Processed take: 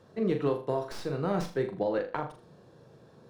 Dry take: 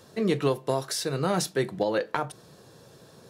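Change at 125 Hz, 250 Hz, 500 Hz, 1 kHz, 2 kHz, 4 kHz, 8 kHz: −4.0, −2.5, −2.5, −4.5, −7.0, −13.0, −19.0 decibels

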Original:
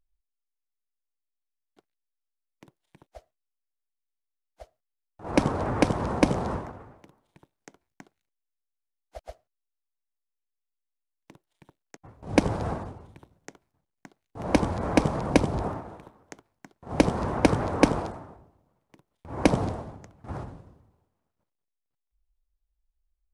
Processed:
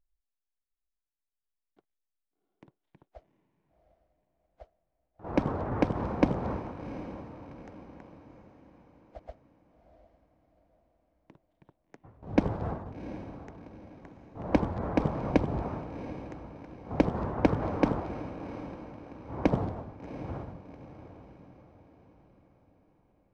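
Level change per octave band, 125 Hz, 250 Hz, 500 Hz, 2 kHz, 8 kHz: −3.0 dB, −3.5 dB, −4.0 dB, −7.5 dB, below −15 dB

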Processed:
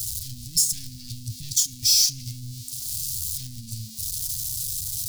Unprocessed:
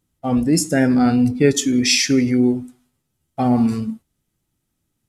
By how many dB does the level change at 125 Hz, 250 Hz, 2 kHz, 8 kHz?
−10.5, −30.5, −24.5, +3.0 decibels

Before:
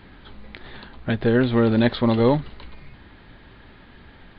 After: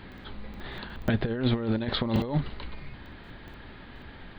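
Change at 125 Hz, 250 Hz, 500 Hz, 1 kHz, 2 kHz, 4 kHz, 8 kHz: −5.0 dB, −8.5 dB, −11.5 dB, −8.5 dB, −7.0 dB, −1.5 dB, can't be measured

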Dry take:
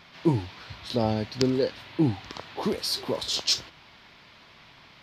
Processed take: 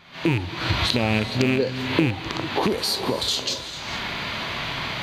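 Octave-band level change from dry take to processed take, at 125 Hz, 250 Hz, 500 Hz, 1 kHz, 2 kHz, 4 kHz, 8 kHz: +5.0, +3.5, +3.0, +8.0, +14.5, +5.5, +2.5 decibels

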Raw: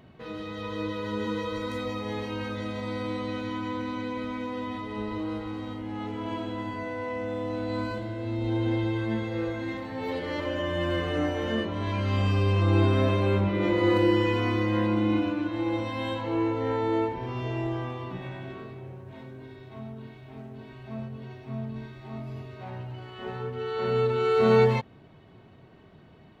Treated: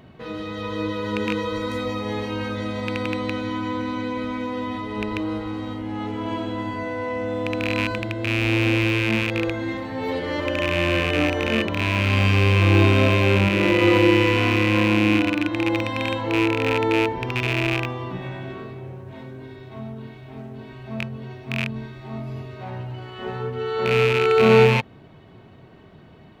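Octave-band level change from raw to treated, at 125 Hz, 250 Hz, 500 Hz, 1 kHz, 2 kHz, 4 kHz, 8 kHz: +5.5 dB, +5.5 dB, +5.5 dB, +5.5 dB, +12.0 dB, +10.0 dB, can't be measured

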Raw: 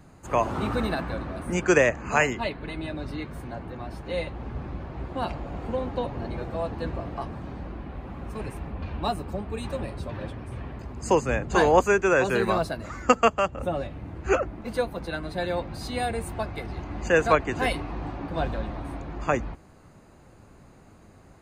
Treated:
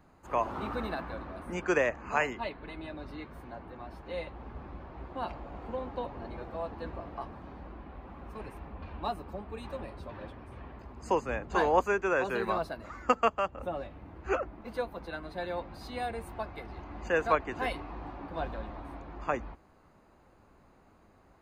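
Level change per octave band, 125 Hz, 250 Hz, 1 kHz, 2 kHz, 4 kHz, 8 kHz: −11.5, −9.0, −5.0, −7.0, −9.0, −14.0 decibels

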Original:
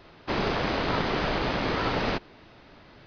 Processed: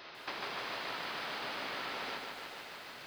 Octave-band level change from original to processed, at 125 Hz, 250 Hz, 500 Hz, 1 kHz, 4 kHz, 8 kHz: −26.0 dB, −20.5 dB, −16.0 dB, −11.0 dB, −7.0 dB, can't be measured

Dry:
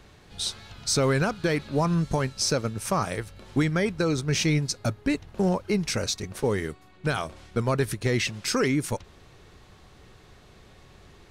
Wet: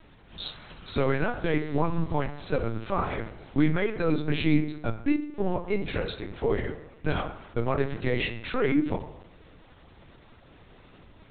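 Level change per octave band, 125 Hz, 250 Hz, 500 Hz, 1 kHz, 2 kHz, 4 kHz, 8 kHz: −4.0 dB, −0.5 dB, −1.5 dB, −1.5 dB, −2.5 dB, −8.0 dB, below −40 dB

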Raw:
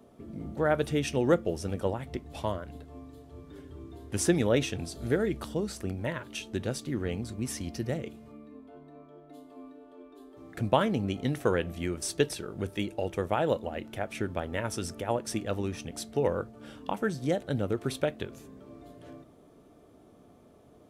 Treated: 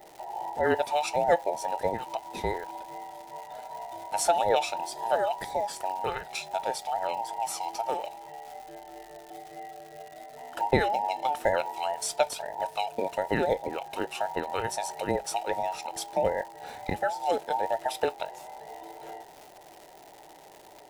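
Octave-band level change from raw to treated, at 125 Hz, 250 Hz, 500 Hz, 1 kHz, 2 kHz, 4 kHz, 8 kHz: −10.0, −7.5, +1.5, +9.5, +2.5, +2.0, +2.0 decibels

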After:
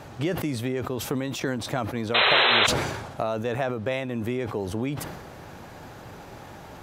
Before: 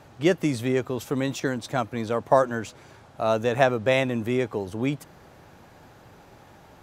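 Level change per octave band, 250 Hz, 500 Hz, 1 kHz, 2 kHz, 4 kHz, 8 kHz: −2.5, −4.5, −0.5, +5.5, +12.5, +4.5 decibels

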